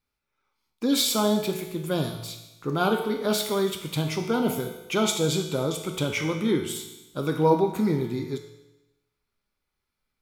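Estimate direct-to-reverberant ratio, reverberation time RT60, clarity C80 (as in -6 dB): 3.0 dB, 1.0 s, 9.0 dB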